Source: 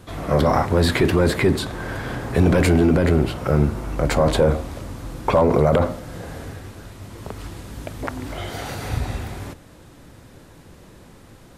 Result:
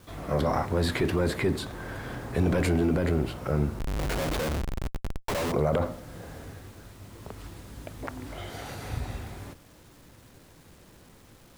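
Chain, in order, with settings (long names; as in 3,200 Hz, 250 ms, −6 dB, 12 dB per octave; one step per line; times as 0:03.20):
bit-depth reduction 8 bits, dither none
0:03.79–0:05.52: comparator with hysteresis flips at −24.5 dBFS
level −8.5 dB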